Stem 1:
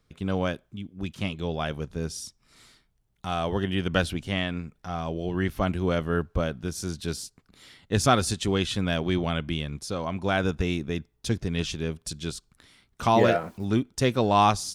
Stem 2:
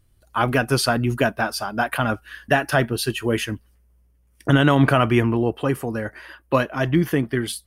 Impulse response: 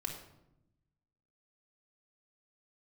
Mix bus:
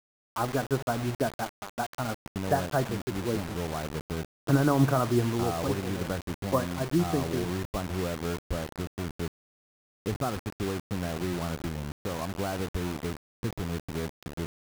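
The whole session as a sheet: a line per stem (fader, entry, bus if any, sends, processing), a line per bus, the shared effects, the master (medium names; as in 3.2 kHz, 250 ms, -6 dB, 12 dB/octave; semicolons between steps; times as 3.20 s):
+3.0 dB, 2.15 s, send -15.5 dB, compression 2.5:1, threshold -37 dBFS, peak gain reduction 14.5 dB
-6.5 dB, 0.00 s, send -13 dB, upward expansion 1.5:1, over -29 dBFS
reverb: on, RT60 0.85 s, pre-delay 3 ms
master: expander -41 dBFS; low-pass 1.3 kHz 24 dB/octave; word length cut 6-bit, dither none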